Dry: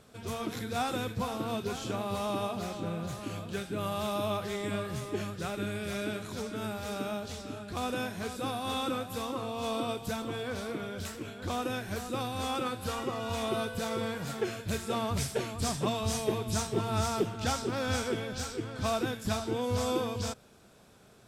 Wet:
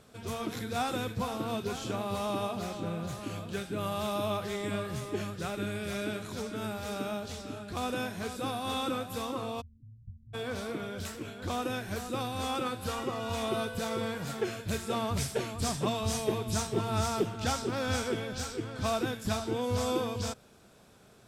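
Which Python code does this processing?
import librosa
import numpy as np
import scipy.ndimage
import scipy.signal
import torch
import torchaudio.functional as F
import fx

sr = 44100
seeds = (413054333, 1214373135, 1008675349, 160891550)

y = fx.cheby2_lowpass(x, sr, hz=630.0, order=4, stop_db=80, at=(9.6, 10.33), fade=0.02)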